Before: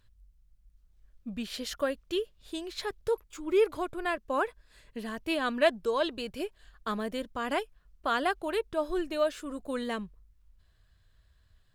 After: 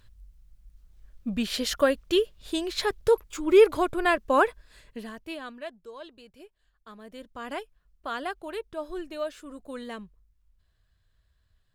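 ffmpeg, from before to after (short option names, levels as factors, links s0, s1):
-af "volume=7.94,afade=t=out:st=4.43:d=0.7:silence=0.251189,afade=t=out:st=5.13:d=0.49:silence=0.298538,afade=t=in:st=6.98:d=0.44:silence=0.316228"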